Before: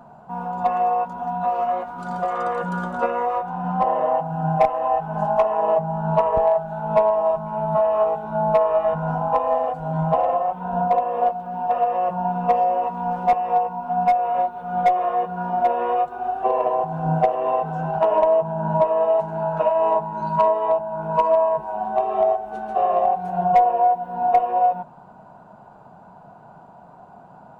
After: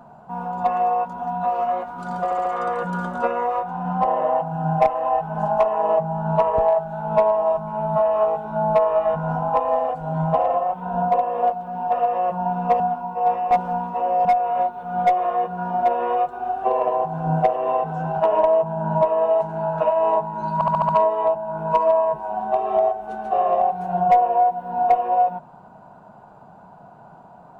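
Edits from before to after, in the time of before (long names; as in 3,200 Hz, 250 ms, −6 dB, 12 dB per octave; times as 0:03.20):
0:02.24: stutter 0.07 s, 4 plays
0:12.59–0:14.04: reverse
0:20.33: stutter 0.07 s, 6 plays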